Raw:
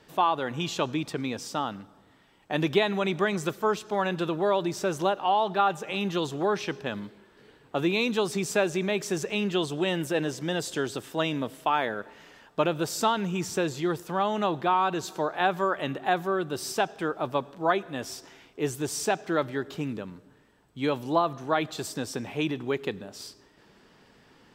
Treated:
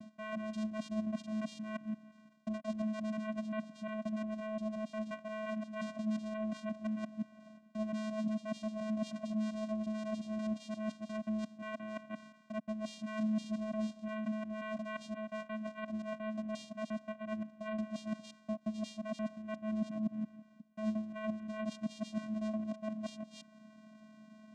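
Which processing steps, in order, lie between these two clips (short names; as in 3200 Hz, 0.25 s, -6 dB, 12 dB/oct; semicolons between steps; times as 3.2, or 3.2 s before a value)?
local time reversal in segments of 0.176 s; reverse; compressor 6:1, threshold -36 dBFS, peak gain reduction 17.5 dB; reverse; vocoder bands 4, square 216 Hz; gain +1.5 dB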